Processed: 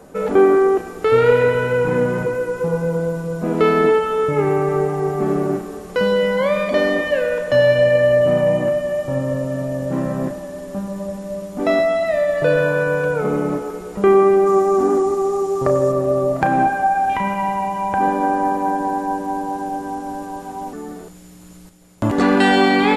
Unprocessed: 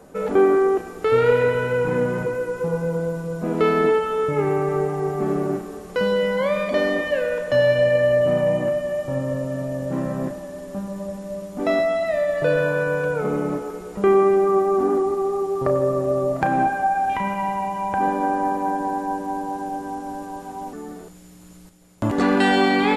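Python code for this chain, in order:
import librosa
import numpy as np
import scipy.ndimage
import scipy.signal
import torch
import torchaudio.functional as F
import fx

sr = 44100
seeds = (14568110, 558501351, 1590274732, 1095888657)

y = fx.peak_eq(x, sr, hz=6700.0, db=8.5, octaves=0.78, at=(14.46, 15.92))
y = y * 10.0 ** (3.5 / 20.0)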